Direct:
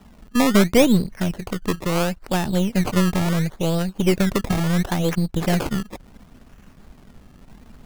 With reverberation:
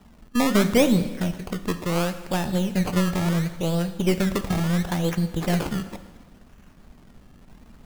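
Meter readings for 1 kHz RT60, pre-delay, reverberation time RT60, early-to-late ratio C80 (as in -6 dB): 1.3 s, 7 ms, 1.3 s, 13.0 dB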